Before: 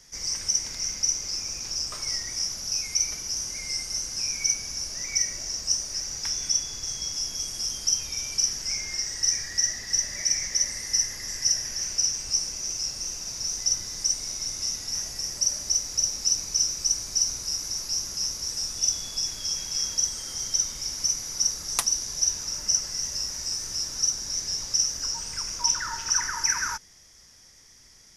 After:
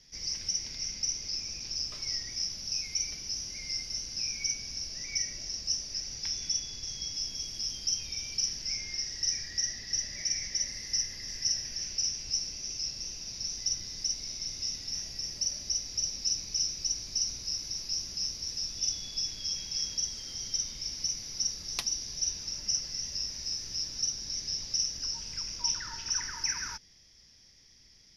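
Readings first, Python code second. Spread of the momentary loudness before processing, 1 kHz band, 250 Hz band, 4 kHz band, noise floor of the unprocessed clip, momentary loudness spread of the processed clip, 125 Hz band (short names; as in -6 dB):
6 LU, under -10 dB, -4.0 dB, -4.0 dB, -53 dBFS, 5 LU, -3.5 dB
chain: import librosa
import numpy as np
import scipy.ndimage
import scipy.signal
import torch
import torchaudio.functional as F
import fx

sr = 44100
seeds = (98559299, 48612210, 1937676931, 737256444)

y = fx.curve_eq(x, sr, hz=(230.0, 1300.0, 2500.0, 5300.0, 7900.0, 12000.0), db=(0, -10, 0, 1, -21, -12))
y = y * librosa.db_to_amplitude(-3.5)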